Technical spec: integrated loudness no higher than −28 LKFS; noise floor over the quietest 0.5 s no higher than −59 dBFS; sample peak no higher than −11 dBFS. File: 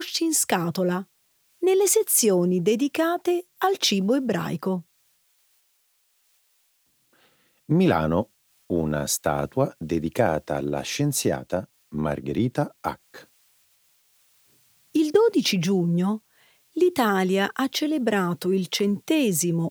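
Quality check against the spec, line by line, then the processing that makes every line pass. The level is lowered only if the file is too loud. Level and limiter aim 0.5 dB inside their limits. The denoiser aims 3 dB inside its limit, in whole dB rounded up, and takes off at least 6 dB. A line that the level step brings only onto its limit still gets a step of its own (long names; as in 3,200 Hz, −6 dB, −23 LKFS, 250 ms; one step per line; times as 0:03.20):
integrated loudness −23.5 LKFS: out of spec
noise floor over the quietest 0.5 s −68 dBFS: in spec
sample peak −6.0 dBFS: out of spec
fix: level −5 dB
brickwall limiter −11.5 dBFS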